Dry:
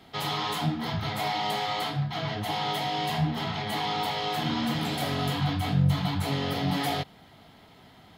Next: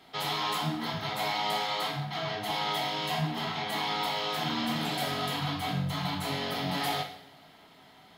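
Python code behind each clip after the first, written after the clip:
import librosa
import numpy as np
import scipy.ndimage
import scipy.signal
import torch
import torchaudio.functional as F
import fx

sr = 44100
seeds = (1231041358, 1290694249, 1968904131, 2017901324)

y = fx.low_shelf(x, sr, hz=220.0, db=-11.0)
y = fx.rev_double_slope(y, sr, seeds[0], early_s=0.58, late_s=1.6, knee_db=-17, drr_db=4.0)
y = y * 10.0 ** (-1.5 / 20.0)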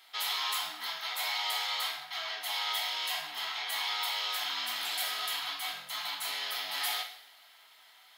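y = scipy.signal.sosfilt(scipy.signal.butter(2, 1300.0, 'highpass', fs=sr, output='sos'), x)
y = fx.high_shelf(y, sr, hz=8200.0, db=8.5)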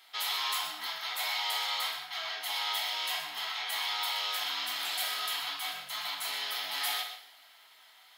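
y = x + 10.0 ** (-11.0 / 20.0) * np.pad(x, (int(123 * sr / 1000.0), 0))[:len(x)]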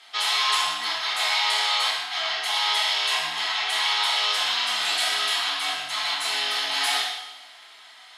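y = scipy.signal.sosfilt(scipy.signal.butter(4, 9400.0, 'lowpass', fs=sr, output='sos'), x)
y = fx.rev_double_slope(y, sr, seeds[1], early_s=0.65, late_s=1.8, knee_db=-17, drr_db=1.5)
y = y * 10.0 ** (8.0 / 20.0)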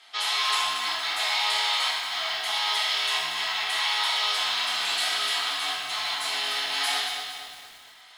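y = fx.echo_crushed(x, sr, ms=231, feedback_pct=55, bits=7, wet_db=-7.5)
y = y * 10.0 ** (-3.0 / 20.0)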